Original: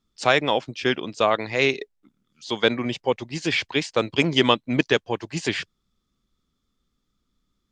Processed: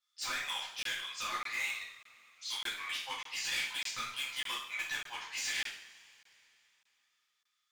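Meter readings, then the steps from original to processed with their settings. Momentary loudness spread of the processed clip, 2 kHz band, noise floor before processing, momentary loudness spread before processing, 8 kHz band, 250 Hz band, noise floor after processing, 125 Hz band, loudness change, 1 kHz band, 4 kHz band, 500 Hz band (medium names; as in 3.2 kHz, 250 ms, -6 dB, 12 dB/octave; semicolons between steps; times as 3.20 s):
6 LU, -10.5 dB, -76 dBFS, 11 LU, -1.0 dB, -35.0 dB, -81 dBFS, -34.0 dB, -13.0 dB, -16.0 dB, -9.5 dB, -34.5 dB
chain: high-pass 1.2 kHz 24 dB/octave; compression, threshold -27 dBFS, peak gain reduction 11 dB; overload inside the chain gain 31.5 dB; two-slope reverb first 0.56 s, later 3.2 s, from -22 dB, DRR -7.5 dB; crackling interface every 0.60 s, samples 1024, zero, from 0.83 s; trim -8 dB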